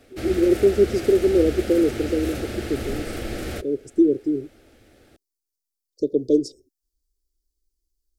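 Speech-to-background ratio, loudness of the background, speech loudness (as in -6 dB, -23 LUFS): 9.5 dB, -31.0 LUFS, -21.5 LUFS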